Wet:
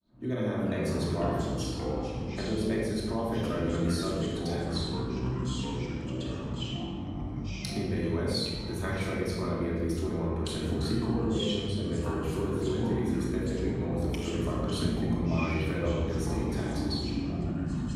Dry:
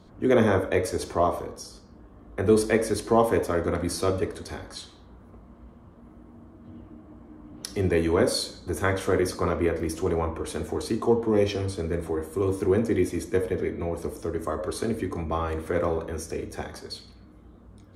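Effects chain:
fade in at the beginning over 0.59 s
thirty-one-band graphic EQ 125 Hz +11 dB, 200 Hz +11 dB, 4,000 Hz +10 dB
downward compressor 3 to 1, threshold −31 dBFS, peak gain reduction 14.5 dB
convolution reverb RT60 1.4 s, pre-delay 3 ms, DRR −4 dB
delay with pitch and tempo change per echo 257 ms, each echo −5 semitones, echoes 2
level −6 dB

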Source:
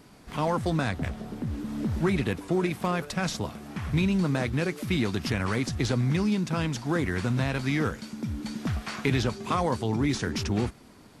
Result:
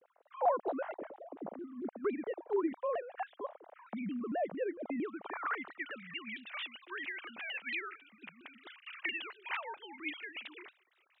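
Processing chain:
three sine waves on the formant tracks
band-pass filter sweep 640 Hz → 2,700 Hz, 0:04.98–0:06.17
pitch modulation by a square or saw wave saw down 4.4 Hz, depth 250 cents

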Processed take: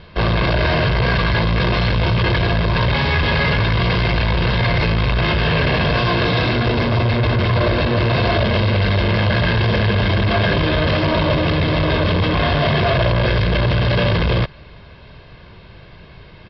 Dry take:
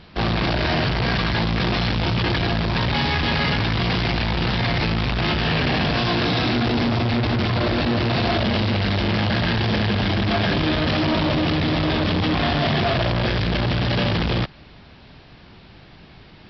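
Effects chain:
high-frequency loss of the air 140 metres
comb filter 1.9 ms, depth 51%
level +4 dB

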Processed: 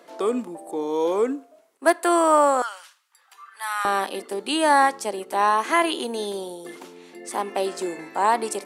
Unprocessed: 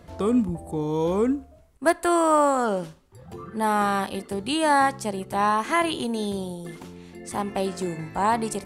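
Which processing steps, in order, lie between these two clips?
high-pass filter 320 Hz 24 dB per octave, from 0:02.62 1,200 Hz, from 0:03.85 290 Hz
level +2.5 dB

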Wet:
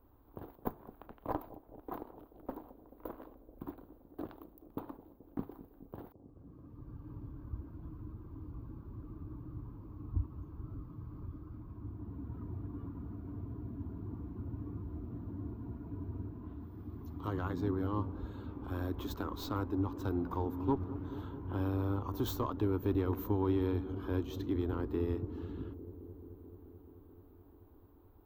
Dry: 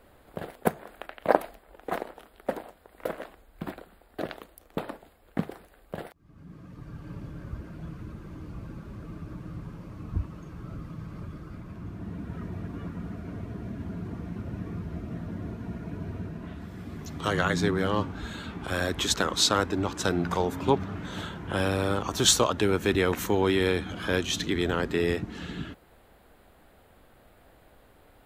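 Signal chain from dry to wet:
tube saturation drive 13 dB, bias 0.35
drawn EQ curve 110 Hz 0 dB, 180 Hz −13 dB, 280 Hz +1 dB, 600 Hz −14 dB, 1,000 Hz −3 dB, 1,900 Hz −22 dB, 3,900 Hz −19 dB, 10,000 Hz −29 dB, 15,000 Hz +3 dB
bucket-brigade delay 216 ms, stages 1,024, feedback 82%, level −14.5 dB
level −2.5 dB

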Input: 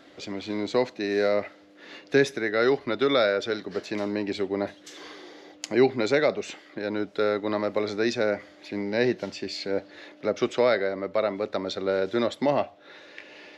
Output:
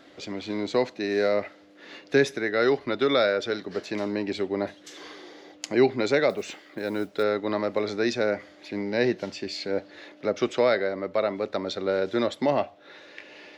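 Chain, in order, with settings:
0:06.29–0:07.23: noise that follows the level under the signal 29 dB

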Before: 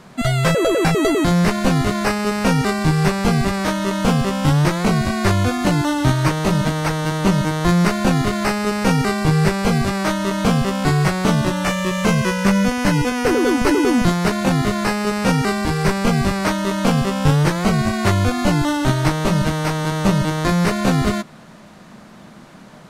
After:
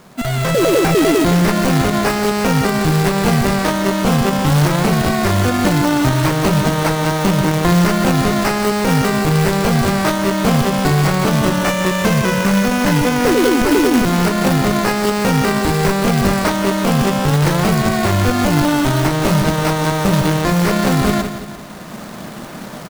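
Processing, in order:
repeating echo 171 ms, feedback 42%, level −11 dB
brickwall limiter −10 dBFS, peak gain reduction 8.5 dB
parametric band 510 Hz +3 dB 2.6 octaves
log-companded quantiser 4 bits
automatic gain control
level −2.5 dB

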